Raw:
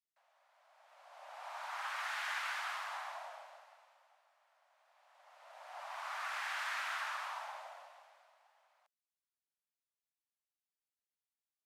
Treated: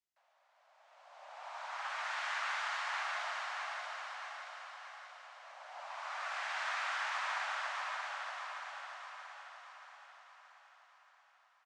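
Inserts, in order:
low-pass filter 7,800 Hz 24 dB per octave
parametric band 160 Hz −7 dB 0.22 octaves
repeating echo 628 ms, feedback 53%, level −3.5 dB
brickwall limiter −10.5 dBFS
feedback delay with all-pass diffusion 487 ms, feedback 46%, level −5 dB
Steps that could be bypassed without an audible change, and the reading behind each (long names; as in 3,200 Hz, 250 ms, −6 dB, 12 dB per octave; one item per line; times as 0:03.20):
parametric band 160 Hz: nothing at its input below 480 Hz
brickwall limiter −10.5 dBFS: peak of its input −26.5 dBFS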